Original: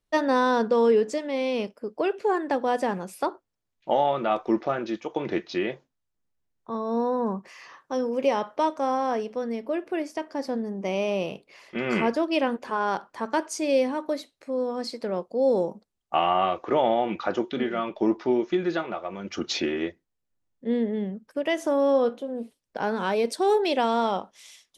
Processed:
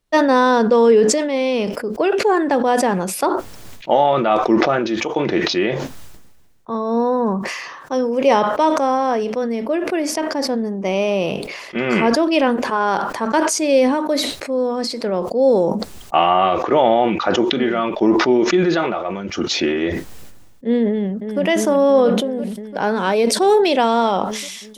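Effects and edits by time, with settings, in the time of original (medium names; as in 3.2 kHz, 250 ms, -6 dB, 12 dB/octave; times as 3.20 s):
20.87–21.42 s: echo throw 340 ms, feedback 70%, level -5.5 dB
whole clip: decay stretcher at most 39 dB/s; trim +7.5 dB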